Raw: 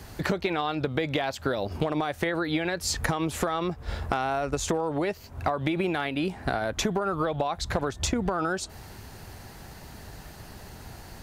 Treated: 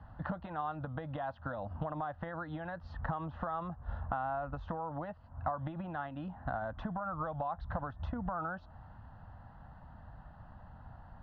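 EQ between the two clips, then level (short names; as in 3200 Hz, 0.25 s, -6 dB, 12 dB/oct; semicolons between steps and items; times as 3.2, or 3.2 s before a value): inverse Chebyshev low-pass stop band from 7800 Hz, stop band 60 dB; air absorption 67 m; fixed phaser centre 950 Hz, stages 4; -6.0 dB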